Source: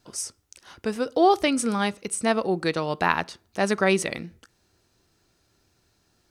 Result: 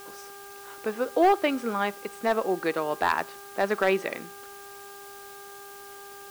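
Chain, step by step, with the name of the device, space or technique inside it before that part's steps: aircraft radio (band-pass 320–2300 Hz; hard clipper -13.5 dBFS, distortion -17 dB; mains buzz 400 Hz, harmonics 4, -46 dBFS -2 dB/octave; white noise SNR 20 dB)

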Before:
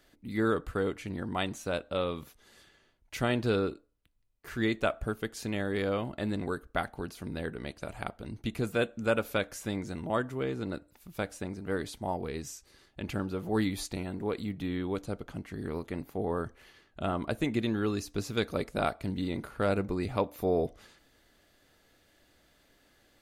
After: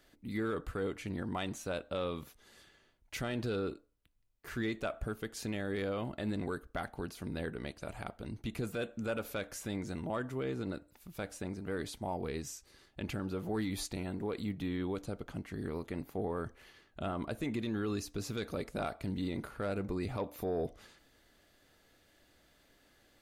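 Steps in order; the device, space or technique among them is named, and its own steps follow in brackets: soft clipper into limiter (saturation -17 dBFS, distortion -22 dB; peak limiter -25 dBFS, peak gain reduction 6.5 dB); trim -1.5 dB

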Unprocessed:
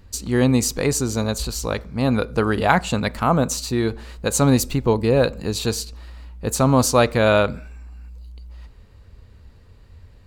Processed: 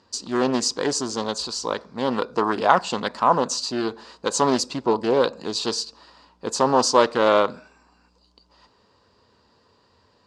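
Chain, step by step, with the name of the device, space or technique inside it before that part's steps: full-range speaker at full volume (loudspeaker Doppler distortion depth 0.55 ms; cabinet simulation 280–7700 Hz, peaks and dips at 1 kHz +8 dB, 2.2 kHz -8 dB, 4.9 kHz +8 dB); trim -1.5 dB

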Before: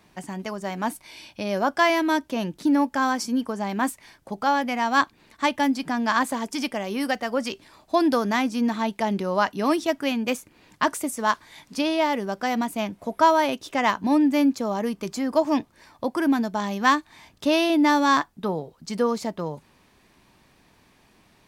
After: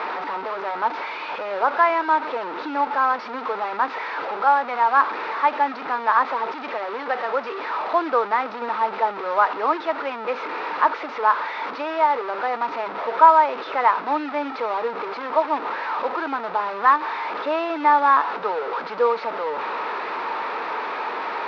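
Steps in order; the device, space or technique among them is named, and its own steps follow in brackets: digital answering machine (band-pass 320–3100 Hz; one-bit delta coder 32 kbps, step -23.5 dBFS; cabinet simulation 400–3500 Hz, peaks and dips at 460 Hz +9 dB, 910 Hz +9 dB, 1.3 kHz +10 dB, 3.1 kHz -7 dB); trim -2 dB

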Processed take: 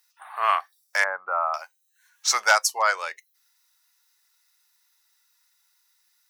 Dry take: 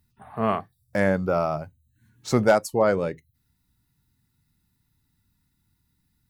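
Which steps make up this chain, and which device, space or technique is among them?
headphones lying on a table (high-pass 1 kHz 24 dB/octave; peaking EQ 5.8 kHz +9 dB 0.43 oct); 1.04–1.54 s: low-pass 1.4 kHz 24 dB/octave; trim +8.5 dB

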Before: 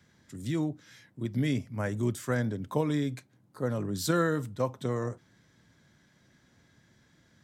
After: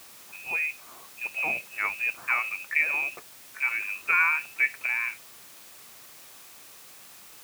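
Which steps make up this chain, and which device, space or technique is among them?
scrambled radio voice (band-pass 370–3100 Hz; frequency inversion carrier 2.8 kHz; white noise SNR 18 dB); high-pass 83 Hz 12 dB/octave; trim +6.5 dB

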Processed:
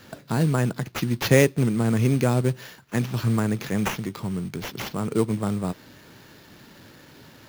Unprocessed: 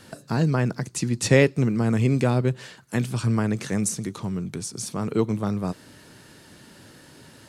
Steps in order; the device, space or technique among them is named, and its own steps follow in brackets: early companding sampler (sample-rate reducer 8.7 kHz, jitter 0%; companded quantiser 6-bit)

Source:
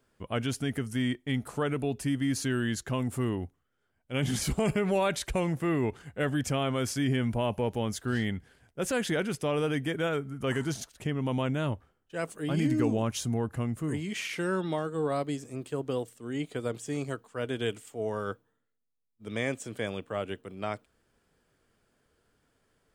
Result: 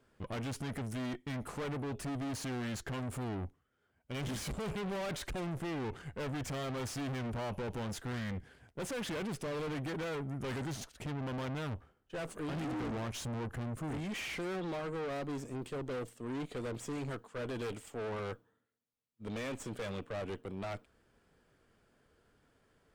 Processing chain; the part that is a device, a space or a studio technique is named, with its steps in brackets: tube preamp driven hard (valve stage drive 41 dB, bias 0.6; treble shelf 4.7 kHz -7.5 dB); trim +5 dB

